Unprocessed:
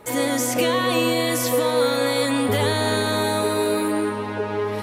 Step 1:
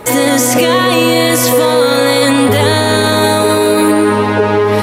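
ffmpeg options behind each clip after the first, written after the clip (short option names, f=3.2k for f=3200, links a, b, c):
-af "alimiter=level_in=16.5dB:limit=-1dB:release=50:level=0:latency=1,volume=-1dB"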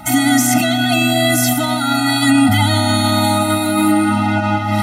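-af "afftfilt=real='re*eq(mod(floor(b*sr/1024/310),2),0)':imag='im*eq(mod(floor(b*sr/1024/310),2),0)':win_size=1024:overlap=0.75"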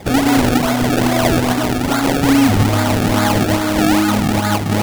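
-af "acrusher=samples=30:mix=1:aa=0.000001:lfo=1:lforange=30:lforate=2.4"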